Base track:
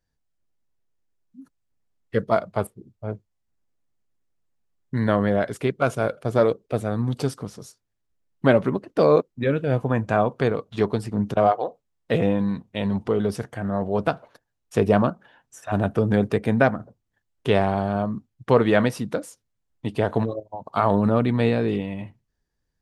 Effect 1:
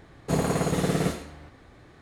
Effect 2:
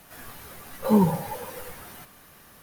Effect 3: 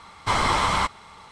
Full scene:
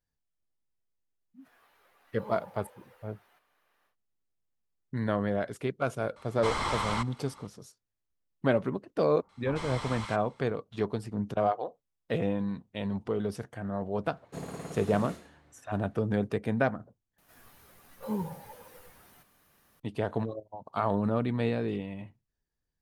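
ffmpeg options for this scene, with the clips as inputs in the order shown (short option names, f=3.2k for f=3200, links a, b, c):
-filter_complex "[2:a]asplit=2[a][b];[3:a]asplit=2[c][d];[0:a]volume=-8.5dB[e];[a]acrossover=split=390 3800:gain=0.1 1 0.224[f][g][h];[f][g][h]amix=inputs=3:normalize=0[i];[d]acrossover=split=1100[j][k];[k]adelay=100[l];[j][l]amix=inputs=2:normalize=0[m];[1:a]highpass=72[n];[e]asplit=2[o][p];[o]atrim=end=17.184[q];[b]atrim=end=2.62,asetpts=PTS-STARTPTS,volume=-14dB[r];[p]atrim=start=19.796[s];[i]atrim=end=2.62,asetpts=PTS-STARTPTS,volume=-17.5dB,afade=t=in:d=0.1,afade=t=out:st=2.52:d=0.1,adelay=1340[t];[c]atrim=end=1.31,asetpts=PTS-STARTPTS,volume=-9.5dB,afade=t=in:d=0.004:c=hsin,afade=t=out:st=1.306:d=0.004:c=hsin,adelay=6160[u];[m]atrim=end=1.31,asetpts=PTS-STARTPTS,volume=-15.5dB,afade=t=in:d=0.004:c=hsin,afade=t=out:st=1.306:d=0.004:c=hsin,adelay=9190[v];[n]atrim=end=2.01,asetpts=PTS-STARTPTS,volume=-15dB,afade=t=in:d=0.004:c=hsin,afade=t=out:st=2.006:d=0.004:c=hsin,adelay=14040[w];[q][r]acrossfade=d=0.004:c1=hsin:c2=hsin[x];[x][s]acrossfade=d=0.004:c1=hsin:c2=hsin[y];[y][t][u][v][w]amix=inputs=5:normalize=0"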